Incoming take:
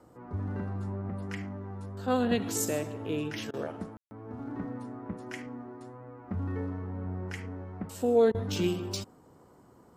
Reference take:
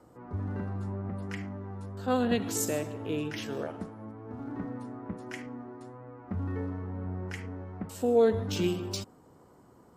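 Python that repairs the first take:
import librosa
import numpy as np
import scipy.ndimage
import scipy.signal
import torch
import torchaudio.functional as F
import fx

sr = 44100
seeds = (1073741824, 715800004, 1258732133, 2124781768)

y = fx.fix_ambience(x, sr, seeds[0], print_start_s=9.45, print_end_s=9.95, start_s=3.97, end_s=4.11)
y = fx.fix_interpolate(y, sr, at_s=(3.51, 8.32), length_ms=25.0)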